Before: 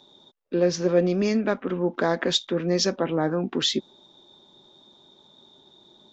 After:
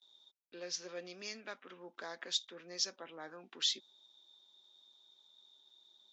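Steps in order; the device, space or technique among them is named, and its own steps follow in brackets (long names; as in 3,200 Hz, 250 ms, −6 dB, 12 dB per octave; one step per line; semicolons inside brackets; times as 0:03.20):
piezo pickup straight into a mixer (low-pass filter 5,800 Hz 12 dB per octave; first difference)
0:01.86–0:03.20: parametric band 3,000 Hz −3.5 dB 2 octaves
high-pass filter 100 Hz
noise gate with hold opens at −55 dBFS
level −2 dB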